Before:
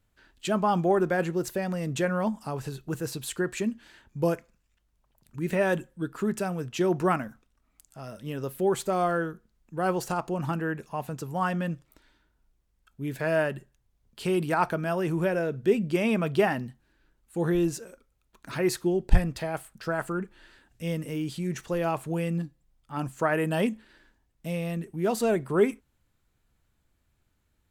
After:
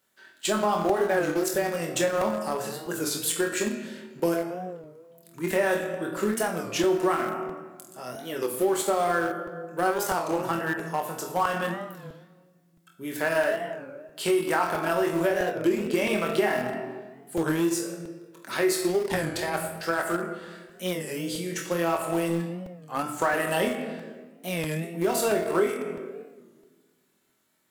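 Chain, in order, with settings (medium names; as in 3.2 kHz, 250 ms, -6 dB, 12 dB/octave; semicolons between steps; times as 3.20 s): high-pass 340 Hz 12 dB/octave; treble shelf 6.7 kHz +7 dB; band-stop 2.5 kHz, Q 29; flutter echo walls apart 4.1 m, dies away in 0.27 s; simulated room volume 1200 m³, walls mixed, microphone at 1.1 m; in parallel at -11 dB: small samples zeroed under -24 dBFS; on the sum: compression 3:1, threshold -25 dBFS, peak gain reduction 9.5 dB; crackling interface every 0.66 s, samples 128, repeat, from 0.89 s; warped record 33 1/3 rpm, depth 160 cents; trim +3 dB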